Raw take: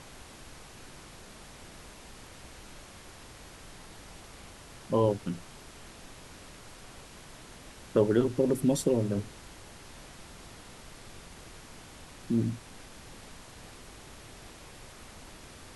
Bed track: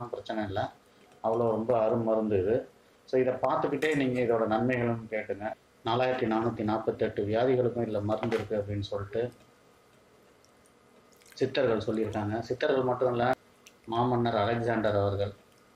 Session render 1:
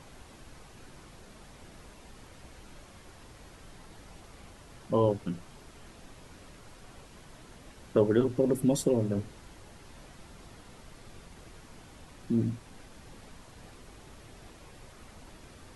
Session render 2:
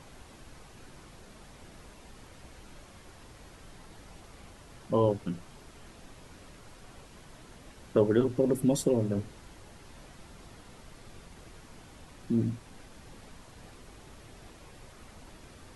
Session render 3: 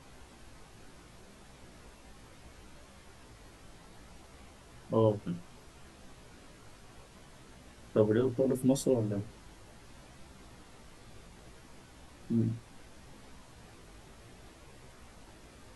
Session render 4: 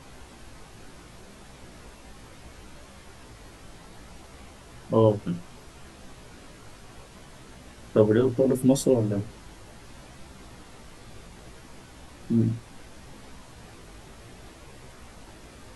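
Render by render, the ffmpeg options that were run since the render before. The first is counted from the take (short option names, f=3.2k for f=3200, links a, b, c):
-af "afftdn=nr=6:nf=-50"
-af anull
-af "flanger=delay=15:depth=3.5:speed=0.68"
-af "volume=7dB"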